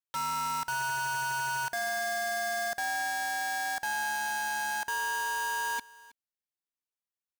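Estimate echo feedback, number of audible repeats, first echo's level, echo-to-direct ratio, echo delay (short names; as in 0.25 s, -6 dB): no steady repeat, 1, -21.5 dB, -21.5 dB, 0.32 s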